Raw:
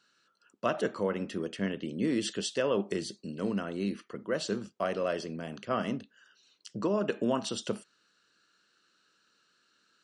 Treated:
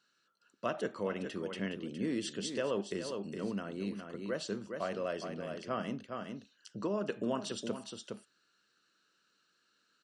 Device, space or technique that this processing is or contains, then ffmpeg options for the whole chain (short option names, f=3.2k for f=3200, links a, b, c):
ducked delay: -filter_complex "[0:a]asplit=3[a][b][c];[b]adelay=413,volume=-5dB[d];[c]apad=whole_len=460958[e];[d][e]sidechaincompress=threshold=-35dB:ratio=8:attack=26:release=207[f];[a][f]amix=inputs=2:normalize=0,asettb=1/sr,asplit=3[g][h][i];[g]atrim=end=0.984[j];[h]atrim=start=0.98:end=1.74,asetpts=PTS-STARTPTS,afade=t=in:d=0.004:c=qsin,afade=t=out:st=0.756:d=0.004:c=qsin,equalizer=f=2.6k:t=o:w=1.2:g=4[k];[i]atrim=start=1.736[l];[j][k]acrossfade=d=0.004:c1=hsin:c2=qsin[m];[m][l]acrossfade=d=0.004:c1=qsin:c2=hsin,volume=-5.5dB"